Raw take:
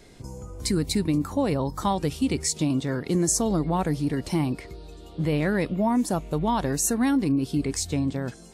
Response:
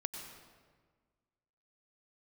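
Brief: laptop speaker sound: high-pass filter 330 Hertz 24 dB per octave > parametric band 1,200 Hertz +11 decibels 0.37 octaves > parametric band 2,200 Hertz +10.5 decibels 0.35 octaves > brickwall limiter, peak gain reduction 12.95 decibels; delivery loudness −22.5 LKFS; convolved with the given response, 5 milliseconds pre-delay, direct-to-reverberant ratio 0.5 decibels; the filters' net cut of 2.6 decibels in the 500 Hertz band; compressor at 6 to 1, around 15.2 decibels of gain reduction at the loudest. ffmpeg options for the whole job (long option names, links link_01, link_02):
-filter_complex "[0:a]equalizer=frequency=500:width_type=o:gain=-3,acompressor=threshold=-37dB:ratio=6,asplit=2[link_01][link_02];[1:a]atrim=start_sample=2205,adelay=5[link_03];[link_02][link_03]afir=irnorm=-1:irlink=0,volume=-0.5dB[link_04];[link_01][link_04]amix=inputs=2:normalize=0,highpass=frequency=330:width=0.5412,highpass=frequency=330:width=1.3066,equalizer=frequency=1200:width_type=o:width=0.37:gain=11,equalizer=frequency=2200:width_type=o:width=0.35:gain=10.5,volume=21dB,alimiter=limit=-13dB:level=0:latency=1"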